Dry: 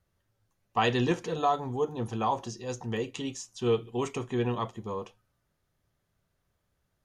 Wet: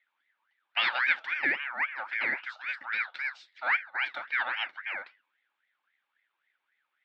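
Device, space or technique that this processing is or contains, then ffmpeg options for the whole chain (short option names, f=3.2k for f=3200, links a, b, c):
voice changer toy: -filter_complex "[0:a]asettb=1/sr,asplit=3[a][b][c];[a]atrim=end=3.544[d];[b]atrim=start=3.54:end=4.02,asetpts=PTS-STARTPTS,afade=t=in:d=0.004:c=qsin,afade=t=out:st=0.476:d=0.004:c=qsin,equalizer=f=5.6k:w=0.84:g=-8.5[e];[c]atrim=start=4.016[f];[d][e]acrossfade=d=0.004:c1=hsin:c2=qsin[g];[g][f]acrossfade=d=0.004:c1=qsin:c2=hsin,aeval=exprs='val(0)*sin(2*PI*1500*n/s+1500*0.35/3.7*sin(2*PI*3.7*n/s))':c=same,highpass=430,equalizer=f=440:t=q:w=4:g=-9,equalizer=f=660:t=q:w=4:g=-5,equalizer=f=1.1k:t=q:w=4:g=-7,equalizer=f=1.6k:t=q:w=4:g=4,equalizer=f=2.3k:t=q:w=4:g=5,equalizer=f=3.5k:t=q:w=4:g=6,lowpass=f=3.7k:w=0.5412,lowpass=f=3.7k:w=1.3066"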